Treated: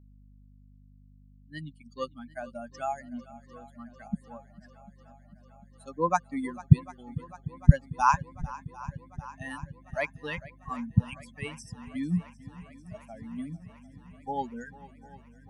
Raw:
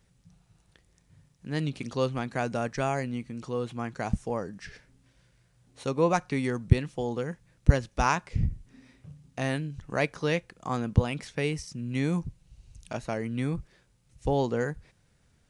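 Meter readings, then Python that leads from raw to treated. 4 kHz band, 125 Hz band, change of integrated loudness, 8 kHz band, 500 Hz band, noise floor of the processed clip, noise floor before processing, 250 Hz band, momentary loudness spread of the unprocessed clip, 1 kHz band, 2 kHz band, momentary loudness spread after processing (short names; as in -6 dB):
n/a, +0.5 dB, -0.5 dB, -5.5 dB, -8.5 dB, -56 dBFS, -66 dBFS, -2.0 dB, 12 LU, +1.5 dB, -4.0 dB, 24 LU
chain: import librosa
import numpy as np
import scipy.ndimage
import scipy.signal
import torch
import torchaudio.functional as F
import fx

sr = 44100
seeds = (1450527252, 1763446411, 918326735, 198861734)

y = fx.bin_expand(x, sr, power=3.0)
y = fx.graphic_eq_15(y, sr, hz=(160, 400, 1000, 4000), db=(9, -12, 8, -8))
y = fx.add_hum(y, sr, base_hz=50, snr_db=23)
y = fx.echo_swing(y, sr, ms=747, ratio=1.5, feedback_pct=69, wet_db=-19.0)
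y = y * 10.0 ** (3.0 / 20.0)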